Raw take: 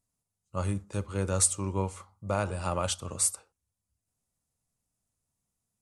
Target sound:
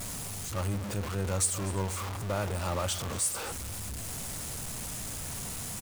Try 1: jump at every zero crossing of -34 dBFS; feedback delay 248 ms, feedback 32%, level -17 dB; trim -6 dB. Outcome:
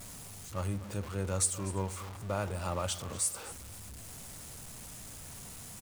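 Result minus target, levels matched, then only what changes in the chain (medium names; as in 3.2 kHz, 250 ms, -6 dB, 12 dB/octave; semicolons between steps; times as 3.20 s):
jump at every zero crossing: distortion -7 dB
change: jump at every zero crossing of -25 dBFS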